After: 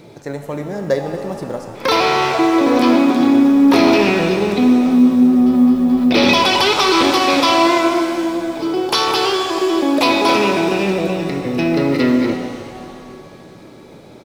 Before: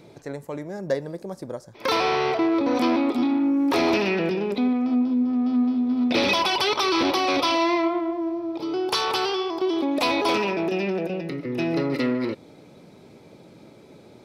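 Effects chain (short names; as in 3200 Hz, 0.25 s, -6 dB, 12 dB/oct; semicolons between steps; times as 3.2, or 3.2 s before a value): frequency-shifting echo 0.272 s, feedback 50%, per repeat -74 Hz, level -21 dB; companded quantiser 8-bit; shimmer reverb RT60 2.3 s, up +7 st, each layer -8 dB, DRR 5.5 dB; gain +7 dB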